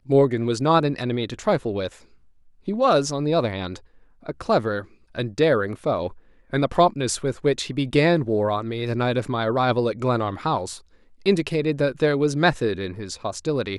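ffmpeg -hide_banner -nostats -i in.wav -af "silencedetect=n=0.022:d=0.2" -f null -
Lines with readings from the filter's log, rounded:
silence_start: 1.88
silence_end: 2.68 | silence_duration: 0.80
silence_start: 3.77
silence_end: 4.26 | silence_duration: 0.49
silence_start: 4.82
silence_end: 5.15 | silence_duration: 0.33
silence_start: 6.12
silence_end: 6.53 | silence_duration: 0.41
silence_start: 10.77
silence_end: 11.26 | silence_duration: 0.48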